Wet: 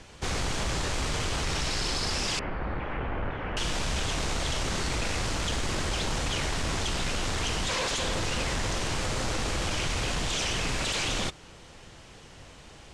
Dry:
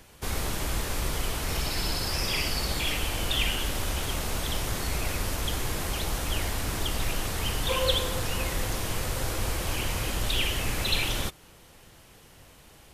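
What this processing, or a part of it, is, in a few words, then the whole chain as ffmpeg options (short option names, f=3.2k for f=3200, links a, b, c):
synthesiser wavefolder: -filter_complex "[0:a]aeval=exprs='0.0398*(abs(mod(val(0)/0.0398+3,4)-2)-1)':c=same,lowpass=f=7.8k:w=0.5412,lowpass=f=7.8k:w=1.3066,asettb=1/sr,asplit=3[a][b][c];[a]atrim=end=2.394[d];[b]atrim=start=2.39:end=3.57,asetpts=PTS-STARTPTS,afade=t=in:d=0.004:c=qsin,afade=t=out:st=1.176:d=0.004:c=qsin,lowpass=f=1.8k:w=0.5412,lowpass=f=1.8k:w=1.3066[e];[c]atrim=start=3.566[f];[d][e]acrossfade=d=0.004:c1=hsin:c2=qsin[g];[g][f]acrossfade=d=0.004:c1=qsin:c2=hsin,volume=4.5dB"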